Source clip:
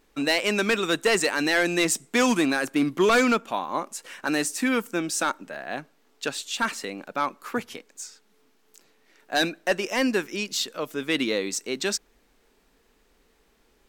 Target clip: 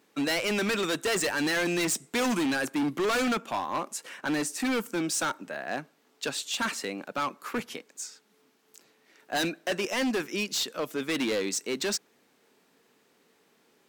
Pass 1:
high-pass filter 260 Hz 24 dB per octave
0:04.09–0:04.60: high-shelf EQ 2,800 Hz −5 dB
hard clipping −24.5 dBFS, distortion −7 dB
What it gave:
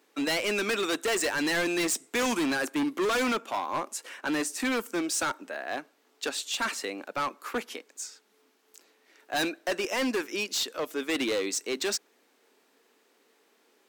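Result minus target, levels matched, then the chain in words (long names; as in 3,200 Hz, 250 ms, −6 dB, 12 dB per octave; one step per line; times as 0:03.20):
125 Hz band −6.5 dB
high-pass filter 120 Hz 24 dB per octave
0:04.09–0:04.60: high-shelf EQ 2,800 Hz −5 dB
hard clipping −24.5 dBFS, distortion −7 dB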